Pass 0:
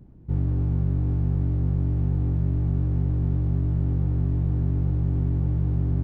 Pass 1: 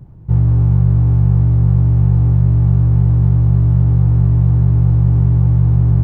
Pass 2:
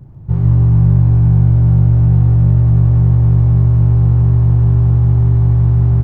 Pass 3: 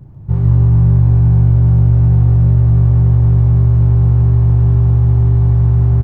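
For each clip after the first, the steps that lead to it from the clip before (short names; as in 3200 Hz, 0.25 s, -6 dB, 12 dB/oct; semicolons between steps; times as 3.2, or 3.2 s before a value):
ten-band EQ 125 Hz +9 dB, 250 Hz -8 dB, 1000 Hz +6 dB; gain +7 dB
loudspeakers at several distances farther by 13 m -5 dB, 33 m -11 dB, 50 m -4 dB
doubler 28 ms -12 dB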